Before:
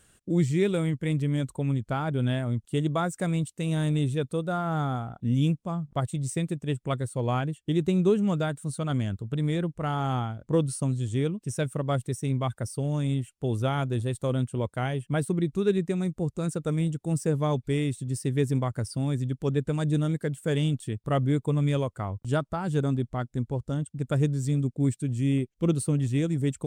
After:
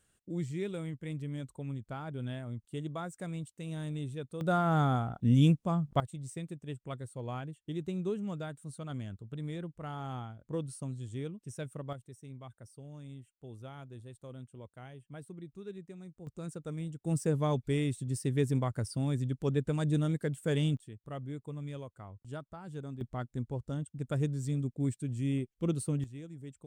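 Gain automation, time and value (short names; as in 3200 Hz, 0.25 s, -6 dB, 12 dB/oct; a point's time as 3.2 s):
-12 dB
from 4.41 s +0.5 dB
from 6 s -12 dB
from 11.93 s -20 dB
from 16.27 s -12 dB
from 17.05 s -4 dB
from 20.77 s -16 dB
from 23.01 s -7 dB
from 26.04 s -19.5 dB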